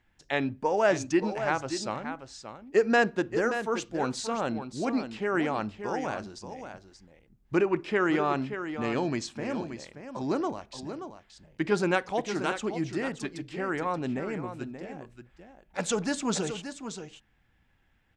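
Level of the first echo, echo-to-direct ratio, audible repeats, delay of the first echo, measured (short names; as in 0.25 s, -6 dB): -9.5 dB, -9.5 dB, 1, 0.579 s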